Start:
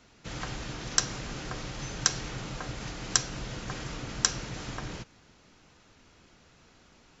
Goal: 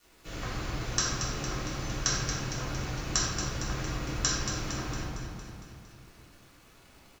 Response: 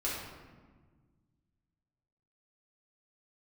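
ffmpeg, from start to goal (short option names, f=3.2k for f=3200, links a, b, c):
-filter_complex "[0:a]acrusher=bits=8:mix=0:aa=0.000001,aecho=1:1:229|458|687|916|1145|1374|1603:0.398|0.231|0.134|0.0777|0.0451|0.0261|0.0152[a];[1:a]atrim=start_sample=2205[b];[a][b]afir=irnorm=-1:irlink=0,volume=-4.5dB"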